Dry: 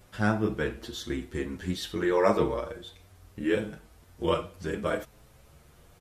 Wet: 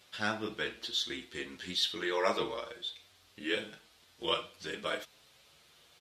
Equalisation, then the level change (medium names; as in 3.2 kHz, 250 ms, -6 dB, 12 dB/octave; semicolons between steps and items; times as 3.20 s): high-pass 380 Hz 6 dB/octave; peaking EQ 3.7 kHz +15 dB 1.6 oct; -7.0 dB